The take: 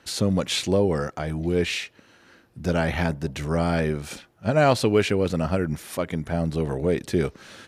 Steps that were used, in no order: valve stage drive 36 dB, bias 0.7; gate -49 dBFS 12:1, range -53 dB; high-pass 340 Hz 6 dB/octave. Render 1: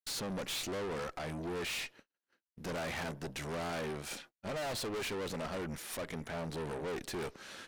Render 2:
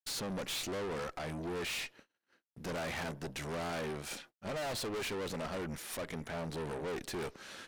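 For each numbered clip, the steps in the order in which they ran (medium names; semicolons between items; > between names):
high-pass > gate > valve stage; gate > high-pass > valve stage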